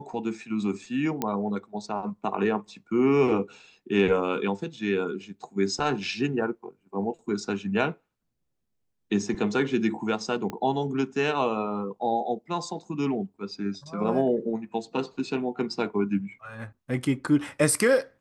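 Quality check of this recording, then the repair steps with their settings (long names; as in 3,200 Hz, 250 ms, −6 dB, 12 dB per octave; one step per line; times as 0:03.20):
0:01.22: click −12 dBFS
0:10.50: click −19 dBFS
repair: click removal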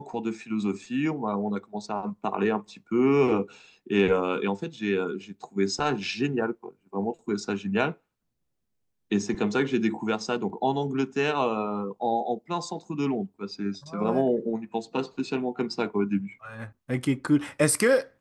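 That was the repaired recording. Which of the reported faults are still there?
0:10.50: click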